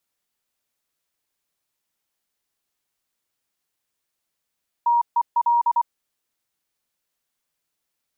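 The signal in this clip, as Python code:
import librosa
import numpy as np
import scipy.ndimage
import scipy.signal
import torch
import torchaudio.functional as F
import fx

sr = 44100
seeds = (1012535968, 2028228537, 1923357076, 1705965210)

y = fx.morse(sr, text='TEL', wpm=24, hz=947.0, level_db=-15.0)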